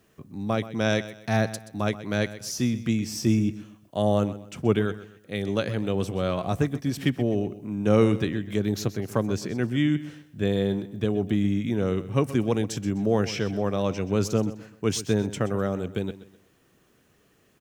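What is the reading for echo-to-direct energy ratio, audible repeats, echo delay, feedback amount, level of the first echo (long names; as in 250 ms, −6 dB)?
−14.5 dB, 3, 127 ms, 33%, −15.0 dB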